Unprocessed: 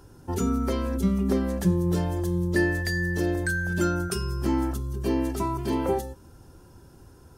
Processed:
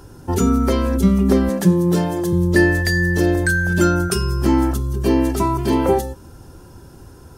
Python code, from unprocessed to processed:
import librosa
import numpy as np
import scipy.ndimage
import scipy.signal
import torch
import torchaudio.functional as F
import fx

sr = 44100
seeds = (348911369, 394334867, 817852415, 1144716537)

y = fx.highpass(x, sr, hz=130.0, slope=24, at=(1.49, 2.33))
y = y * librosa.db_to_amplitude(9.0)